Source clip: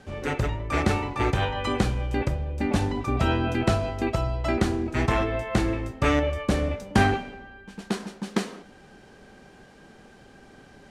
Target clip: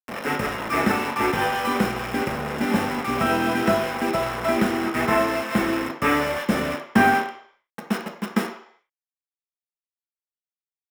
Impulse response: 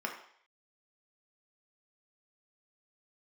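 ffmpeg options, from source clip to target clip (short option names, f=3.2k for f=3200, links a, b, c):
-filter_complex "[0:a]acrusher=bits=4:mix=0:aa=0.000001[a];[1:a]atrim=start_sample=2205[b];[a][b]afir=irnorm=-1:irlink=0"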